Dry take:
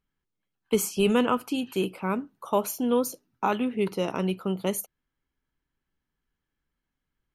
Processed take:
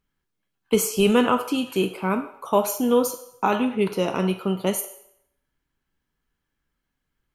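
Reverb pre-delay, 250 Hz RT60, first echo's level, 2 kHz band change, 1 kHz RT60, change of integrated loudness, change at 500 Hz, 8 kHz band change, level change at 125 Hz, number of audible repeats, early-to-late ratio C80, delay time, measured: 4 ms, 0.75 s, no echo, +5.0 dB, 0.70 s, +4.5 dB, +4.5 dB, +5.0 dB, +4.0 dB, no echo, 13.5 dB, no echo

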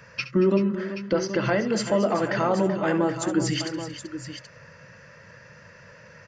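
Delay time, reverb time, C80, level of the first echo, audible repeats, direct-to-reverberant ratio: 69 ms, no reverb, no reverb, -13.5 dB, 4, no reverb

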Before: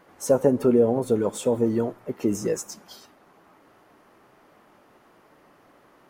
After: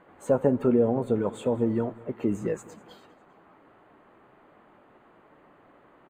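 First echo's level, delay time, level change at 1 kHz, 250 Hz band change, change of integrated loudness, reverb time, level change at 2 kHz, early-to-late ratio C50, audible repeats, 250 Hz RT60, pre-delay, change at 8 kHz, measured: -21.5 dB, 201 ms, -2.0 dB, -2.0 dB, -3.0 dB, no reverb, -2.0 dB, no reverb, 3, no reverb, no reverb, -15.0 dB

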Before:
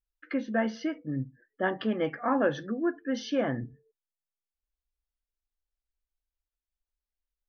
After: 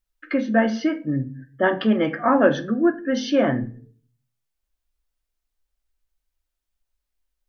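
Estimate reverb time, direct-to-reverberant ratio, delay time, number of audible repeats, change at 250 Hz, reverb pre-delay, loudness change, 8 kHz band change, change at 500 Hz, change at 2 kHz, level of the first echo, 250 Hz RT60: 0.40 s, 8.0 dB, no echo, no echo, +9.5 dB, 3 ms, +9.0 dB, no reading, +9.0 dB, +8.5 dB, no echo, 0.60 s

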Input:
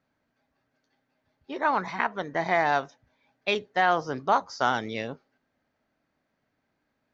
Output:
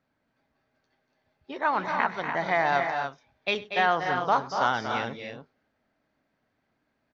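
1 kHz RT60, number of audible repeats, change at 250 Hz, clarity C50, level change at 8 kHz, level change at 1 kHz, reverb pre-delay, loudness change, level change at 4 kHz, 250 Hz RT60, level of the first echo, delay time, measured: no reverb, 3, -1.5 dB, no reverb, no reading, +0.5 dB, no reverb, 0.0 dB, +1.0 dB, no reverb, -19.5 dB, 98 ms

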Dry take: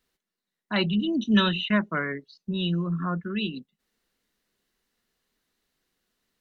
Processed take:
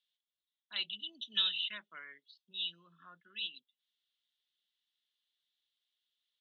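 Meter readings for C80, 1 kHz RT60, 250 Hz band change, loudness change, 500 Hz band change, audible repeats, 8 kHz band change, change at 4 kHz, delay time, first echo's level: no reverb, no reverb, -38.5 dB, -10.0 dB, -32.0 dB, no echo, no reading, -3.0 dB, no echo, no echo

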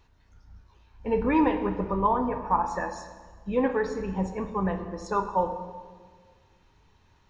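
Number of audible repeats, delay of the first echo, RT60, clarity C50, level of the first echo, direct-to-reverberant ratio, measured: no echo, no echo, 1.6 s, 9.0 dB, no echo, 6.5 dB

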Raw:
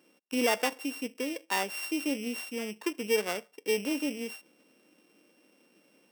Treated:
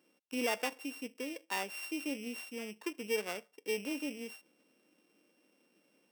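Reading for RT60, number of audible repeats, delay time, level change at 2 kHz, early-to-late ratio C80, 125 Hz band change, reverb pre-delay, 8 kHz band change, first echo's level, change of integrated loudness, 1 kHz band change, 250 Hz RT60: no reverb, no echo, no echo, -5.5 dB, no reverb, no reading, no reverb, -7.0 dB, no echo, -6.5 dB, -7.0 dB, no reverb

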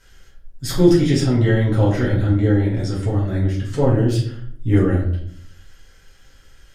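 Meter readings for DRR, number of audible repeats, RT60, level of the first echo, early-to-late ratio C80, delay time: -7.0 dB, no echo, 0.65 s, no echo, 9.0 dB, no echo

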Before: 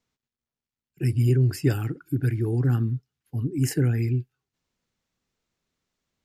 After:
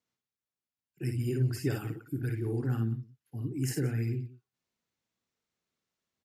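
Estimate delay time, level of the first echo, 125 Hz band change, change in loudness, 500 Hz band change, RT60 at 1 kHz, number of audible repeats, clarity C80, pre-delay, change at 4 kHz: 53 ms, -6.5 dB, -9.0 dB, -8.0 dB, -6.5 dB, no reverb, 2, no reverb, no reverb, -5.5 dB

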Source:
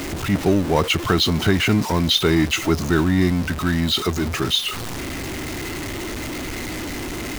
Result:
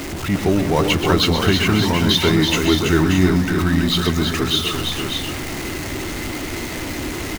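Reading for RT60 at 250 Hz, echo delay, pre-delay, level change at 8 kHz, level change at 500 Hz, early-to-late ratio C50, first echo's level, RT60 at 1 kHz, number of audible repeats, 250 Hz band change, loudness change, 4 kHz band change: no reverb, 129 ms, no reverb, +2.0 dB, +2.5 dB, no reverb, -8.5 dB, no reverb, 4, +2.5 dB, +2.5 dB, +2.0 dB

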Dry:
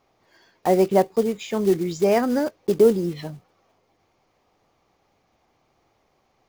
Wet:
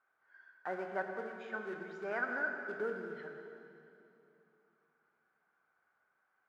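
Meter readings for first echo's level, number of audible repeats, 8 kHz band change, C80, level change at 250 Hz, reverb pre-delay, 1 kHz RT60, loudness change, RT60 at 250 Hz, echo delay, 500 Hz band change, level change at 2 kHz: no echo, no echo, under -30 dB, 5.0 dB, -24.5 dB, 29 ms, 2.6 s, -18.5 dB, 3.3 s, no echo, -21.0 dB, +0.5 dB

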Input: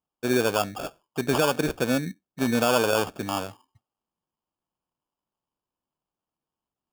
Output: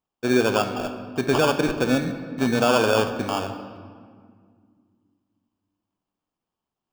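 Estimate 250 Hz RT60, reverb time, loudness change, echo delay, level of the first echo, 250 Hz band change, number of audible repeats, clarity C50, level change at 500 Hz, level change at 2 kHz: 3.0 s, 2.0 s, +2.5 dB, no echo, no echo, +3.5 dB, no echo, 9.5 dB, +3.5 dB, +3.0 dB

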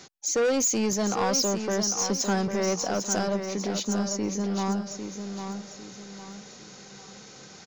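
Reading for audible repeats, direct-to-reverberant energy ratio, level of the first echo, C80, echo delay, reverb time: 4, no reverb, -7.5 dB, no reverb, 801 ms, no reverb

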